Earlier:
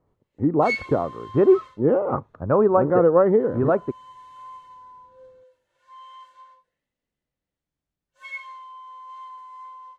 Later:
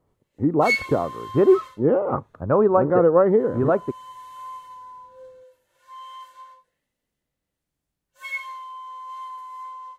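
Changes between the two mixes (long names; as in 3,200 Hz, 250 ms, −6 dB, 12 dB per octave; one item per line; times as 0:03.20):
background +4.0 dB
master: remove high-frequency loss of the air 67 metres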